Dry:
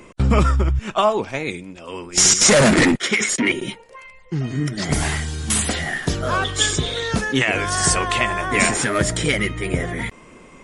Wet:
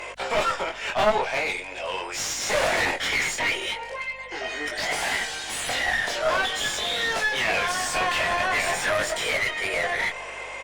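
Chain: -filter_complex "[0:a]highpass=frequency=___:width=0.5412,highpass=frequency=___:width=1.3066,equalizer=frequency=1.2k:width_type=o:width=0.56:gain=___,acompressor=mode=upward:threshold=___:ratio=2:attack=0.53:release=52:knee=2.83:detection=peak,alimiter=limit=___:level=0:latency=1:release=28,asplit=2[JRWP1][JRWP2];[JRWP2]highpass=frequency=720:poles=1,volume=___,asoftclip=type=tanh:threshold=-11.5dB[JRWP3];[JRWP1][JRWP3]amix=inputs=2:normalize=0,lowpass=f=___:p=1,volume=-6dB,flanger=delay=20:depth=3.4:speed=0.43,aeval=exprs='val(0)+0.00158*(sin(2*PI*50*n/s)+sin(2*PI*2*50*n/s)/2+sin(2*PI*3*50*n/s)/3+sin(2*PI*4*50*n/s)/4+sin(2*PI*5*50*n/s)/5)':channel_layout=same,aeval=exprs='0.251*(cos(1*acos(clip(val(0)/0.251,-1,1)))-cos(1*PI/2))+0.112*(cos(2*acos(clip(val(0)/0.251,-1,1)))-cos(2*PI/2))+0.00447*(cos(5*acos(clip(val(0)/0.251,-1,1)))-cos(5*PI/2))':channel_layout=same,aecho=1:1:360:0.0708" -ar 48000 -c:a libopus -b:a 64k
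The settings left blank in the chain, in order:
590, 590, -11.5, -35dB, -11.5dB, 24dB, 1.6k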